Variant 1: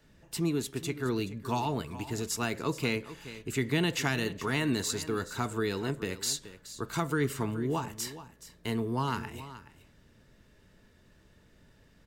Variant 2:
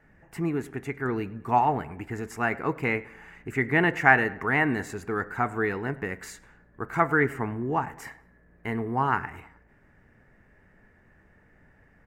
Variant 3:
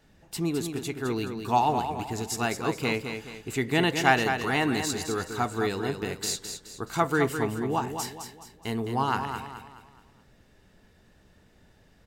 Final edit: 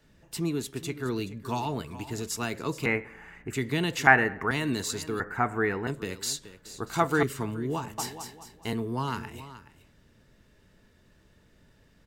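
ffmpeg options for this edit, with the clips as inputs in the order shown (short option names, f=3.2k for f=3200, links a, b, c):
-filter_complex "[1:a]asplit=3[a][b][c];[2:a]asplit=2[d][e];[0:a]asplit=6[f][g][h][i][j][k];[f]atrim=end=2.862[l];[a]atrim=start=2.858:end=3.532[m];[g]atrim=start=3.528:end=4.072[n];[b]atrim=start=4.068:end=4.512[o];[h]atrim=start=4.508:end=5.202[p];[c]atrim=start=5.198:end=5.872[q];[i]atrim=start=5.868:end=6.652[r];[d]atrim=start=6.648:end=7.232[s];[j]atrim=start=7.228:end=7.982[t];[e]atrim=start=7.978:end=8.732[u];[k]atrim=start=8.728[v];[l][m]acrossfade=d=0.004:c1=hsin:c2=hsin[w];[w][n]acrossfade=d=0.004:c1=hsin:c2=hsin[x];[x][o]acrossfade=d=0.004:c1=hsin:c2=hsin[y];[y][p]acrossfade=d=0.004:c1=hsin:c2=hsin[z];[z][q]acrossfade=d=0.004:c1=hsin:c2=hsin[aa];[aa][r]acrossfade=d=0.004:c1=hsin:c2=hsin[ab];[ab][s]acrossfade=d=0.004:c1=hsin:c2=hsin[ac];[ac][t]acrossfade=d=0.004:c1=hsin:c2=hsin[ad];[ad][u]acrossfade=d=0.004:c1=hsin:c2=hsin[ae];[ae][v]acrossfade=d=0.004:c1=hsin:c2=hsin"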